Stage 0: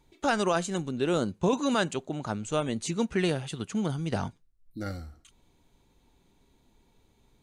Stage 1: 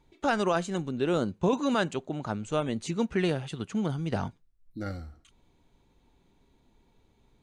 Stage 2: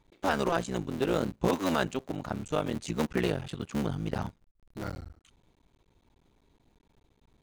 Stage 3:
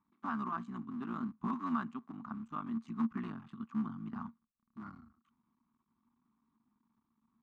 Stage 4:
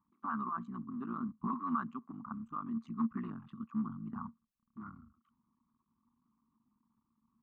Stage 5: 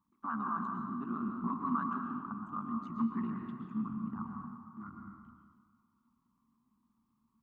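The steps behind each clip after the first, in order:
treble shelf 6 kHz -10.5 dB
cycle switcher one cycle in 3, muted
two resonant band-passes 510 Hz, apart 2.3 oct; trim +1 dB
resonances exaggerated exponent 1.5
reverberation RT60 1.8 s, pre-delay 108 ms, DRR 1.5 dB

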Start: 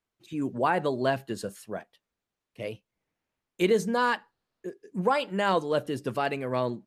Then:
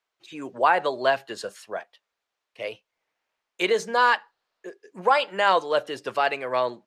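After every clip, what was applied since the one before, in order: three-band isolator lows -20 dB, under 480 Hz, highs -13 dB, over 6.9 kHz; trim +7 dB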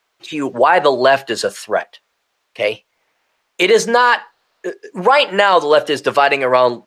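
loudness maximiser +16 dB; trim -1 dB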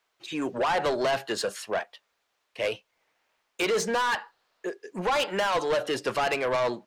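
saturation -14 dBFS, distortion -8 dB; trim -7.5 dB

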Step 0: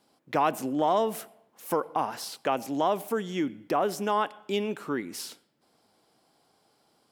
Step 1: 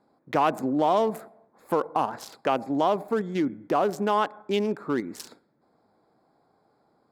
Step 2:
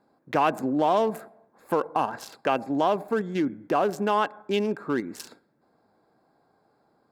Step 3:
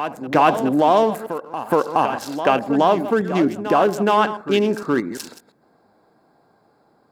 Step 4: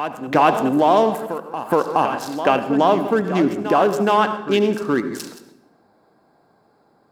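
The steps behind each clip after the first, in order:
local Wiener filter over 15 samples; in parallel at 0 dB: level held to a coarse grid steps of 11 dB
small resonant body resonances 1.6/2.7 kHz, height 9 dB
chunks repeated in reverse 115 ms, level -13 dB; reverse echo 420 ms -10 dB; trim +7 dB
reverberation RT60 0.95 s, pre-delay 65 ms, DRR 12 dB

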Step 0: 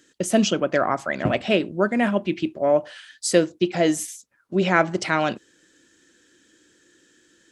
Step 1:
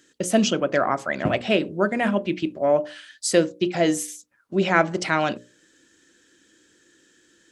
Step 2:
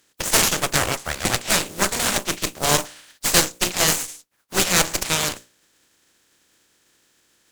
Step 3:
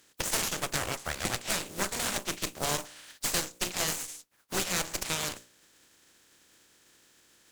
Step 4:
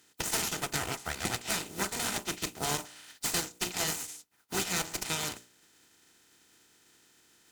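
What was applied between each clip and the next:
hum notches 60/120/180/240/300/360/420/480/540/600 Hz
spectral contrast reduction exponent 0.33; dynamic bell 7.2 kHz, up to +7 dB, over -40 dBFS, Q 1.7; Chebyshev shaper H 8 -10 dB, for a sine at 1.5 dBFS; trim -3 dB
compression 2.5:1, threshold -32 dBFS, peak gain reduction 15 dB
comb of notches 560 Hz

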